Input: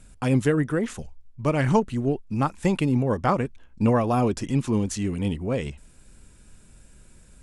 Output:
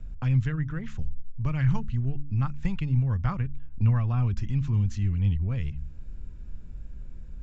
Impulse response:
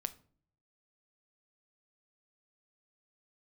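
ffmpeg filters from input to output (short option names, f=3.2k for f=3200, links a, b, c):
-filter_complex "[0:a]asettb=1/sr,asplit=3[a][b][c];[a]atrim=end=3.394[d];[b]atrim=start=3.39:end=4.3,asetpts=PTS-STARTPTS,afade=t=in:d=0.004:c=qsin,afade=t=out:st=0.906:d=0.004:c=qsin,acrossover=split=4900[e][f];[f]acompressor=threshold=-59dB:ratio=4:attack=1:release=60[g];[e][g]amix=inputs=2:normalize=0[h];[c]atrim=start=4.296[i];[d][h]acrossfade=d=0.004:c1=hsin:c2=qsin[j];[j][i]acrossfade=d=0.004:c1=qsin:c2=hsin,aemphasis=mode=reproduction:type=riaa,bandreject=f=71.84:t=h:w=4,bandreject=f=143.68:t=h:w=4,bandreject=f=215.52:t=h:w=4,bandreject=f=287.36:t=h:w=4,acrossover=split=140|1200|2100[k][l][m][n];[l]acompressor=threshold=-38dB:ratio=10[o];[k][o][m][n]amix=inputs=4:normalize=0,aresample=16000,aresample=44100,volume=-4.5dB"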